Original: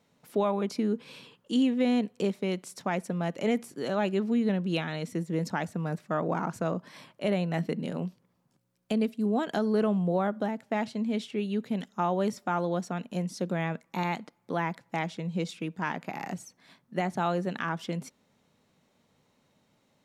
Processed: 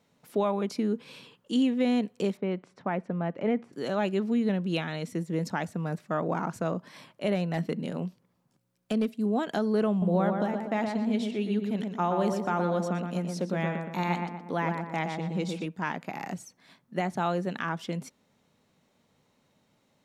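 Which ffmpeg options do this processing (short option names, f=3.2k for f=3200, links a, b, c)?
-filter_complex "[0:a]asettb=1/sr,asplit=3[a][b][c];[a]atrim=end=2.374[d];[b]atrim=start=2.37:end=3.73,asetpts=PTS-STARTPTS,afade=t=in:d=0.004:c=qsin,afade=t=out:st=1.356:d=0.004:c=qsin,lowpass=1.9k[e];[c]atrim=start=3.726[f];[d][e]acrossfade=d=0.004:c1=hsin:c2=qsin[g];[g][f]acrossfade=d=0.004:c1=qsin:c2=hsin,asettb=1/sr,asplit=3[h][i][j];[h]atrim=end=7.354[k];[i]atrim=start=7.35:end=9.21,asetpts=PTS-STARTPTS,afade=t=in:d=0.004:c=qsin,afade=t=out:st=1.856:d=0.004:c=qsin,asoftclip=type=hard:threshold=-20dB[l];[j]atrim=start=9.206[m];[k][l]acrossfade=d=0.004:c1=hsin:c2=qsin[n];[n][m]acrossfade=d=0.004:c1=qsin:c2=hsin,asettb=1/sr,asplit=3[o][p][q];[o]atrim=end=9.904[r];[p]atrim=start=9.9:end=15.66,asetpts=PTS-STARTPTS,afade=t=in:d=0.004:c=qsin,afade=t=out:st=5.756:d=0.004:c=qsin,asplit=2[s][t];[t]adelay=120,lowpass=f=2.1k:p=1,volume=-4dB,asplit=2[u][v];[v]adelay=120,lowpass=f=2.1k:p=1,volume=0.49,asplit=2[w][x];[x]adelay=120,lowpass=f=2.1k:p=1,volume=0.49,asplit=2[y][z];[z]adelay=120,lowpass=f=2.1k:p=1,volume=0.49,asplit=2[aa][ab];[ab]adelay=120,lowpass=f=2.1k:p=1,volume=0.49,asplit=2[ac][ad];[ad]adelay=120,lowpass=f=2.1k:p=1,volume=0.49[ae];[s][u][w][y][aa][ac][ae]amix=inputs=7:normalize=0,atrim=end_sample=254016[af];[q]atrim=start=15.656[ag];[r][af]acrossfade=d=0.004:c1=hsin:c2=qsin[ah];[ah][ag]acrossfade=d=0.004:c1=qsin:c2=hsin"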